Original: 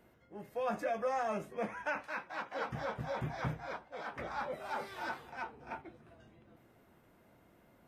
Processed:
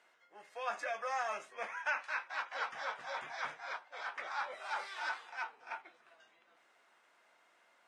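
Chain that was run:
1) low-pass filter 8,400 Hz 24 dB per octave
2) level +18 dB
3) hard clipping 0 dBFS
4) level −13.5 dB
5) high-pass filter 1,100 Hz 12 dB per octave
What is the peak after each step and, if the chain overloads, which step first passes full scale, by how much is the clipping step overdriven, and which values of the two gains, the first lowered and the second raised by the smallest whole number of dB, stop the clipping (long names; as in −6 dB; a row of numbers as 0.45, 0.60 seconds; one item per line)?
−23.5, −5.5, −5.5, −19.0, −22.5 dBFS
no step passes full scale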